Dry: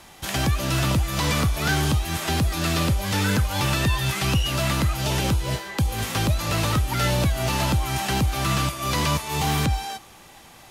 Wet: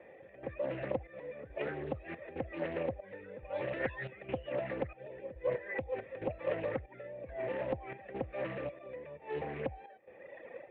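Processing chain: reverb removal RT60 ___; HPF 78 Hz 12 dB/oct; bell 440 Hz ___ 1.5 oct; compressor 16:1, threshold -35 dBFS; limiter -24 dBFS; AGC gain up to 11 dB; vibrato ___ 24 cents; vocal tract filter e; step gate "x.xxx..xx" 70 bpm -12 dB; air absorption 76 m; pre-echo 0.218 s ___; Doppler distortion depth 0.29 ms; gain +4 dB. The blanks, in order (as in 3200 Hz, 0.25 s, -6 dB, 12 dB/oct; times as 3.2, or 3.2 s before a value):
1.5 s, +8 dB, 4.8 Hz, -22.5 dB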